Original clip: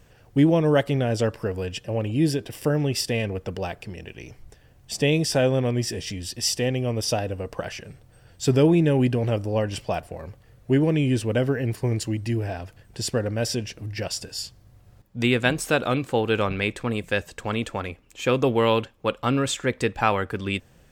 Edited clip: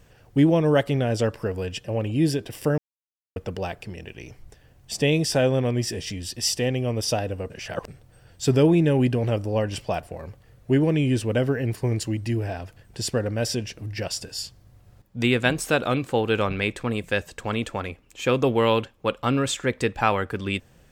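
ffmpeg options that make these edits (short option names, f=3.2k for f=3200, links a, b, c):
-filter_complex "[0:a]asplit=5[a][b][c][d][e];[a]atrim=end=2.78,asetpts=PTS-STARTPTS,afade=t=out:st=2.776:d=0.004:c=hsin[f];[b]atrim=start=2.78:end=3.36,asetpts=PTS-STARTPTS,volume=0[g];[c]atrim=start=3.36:end=7.502,asetpts=PTS-STARTPTS,afade=t=in:d=0.004:c=hsin[h];[d]atrim=start=7.498:end=7.882,asetpts=PTS-STARTPTS,areverse[i];[e]atrim=start=7.878[j];[f][g][h]concat=n=3:v=0:a=1[k];[k][i]acrossfade=d=0.004:c1=hsin:c2=hsin[l];[l][j]acrossfade=d=0.004:c1=hsin:c2=hsin"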